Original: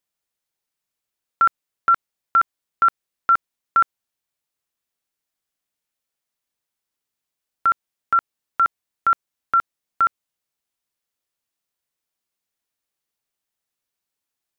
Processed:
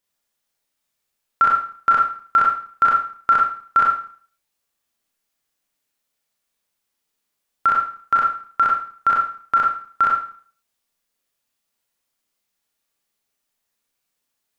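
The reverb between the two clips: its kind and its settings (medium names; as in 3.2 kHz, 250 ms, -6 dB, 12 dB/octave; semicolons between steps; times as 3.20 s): Schroeder reverb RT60 0.47 s, combs from 27 ms, DRR -3 dB; trim +1.5 dB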